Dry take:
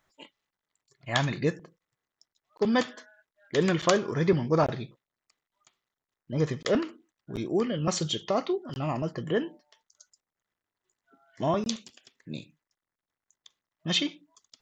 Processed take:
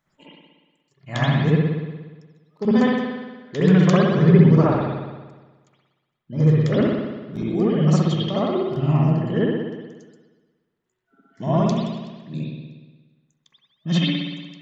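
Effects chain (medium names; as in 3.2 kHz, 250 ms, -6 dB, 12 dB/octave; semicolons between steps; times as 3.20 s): peaking EQ 170 Hz +11 dB 1.1 oct; reverberation RT60 1.3 s, pre-delay 59 ms, DRR -8.5 dB; trim -5 dB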